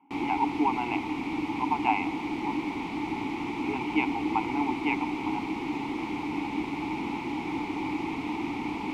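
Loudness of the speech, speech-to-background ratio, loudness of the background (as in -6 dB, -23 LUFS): -31.5 LUFS, 0.5 dB, -32.0 LUFS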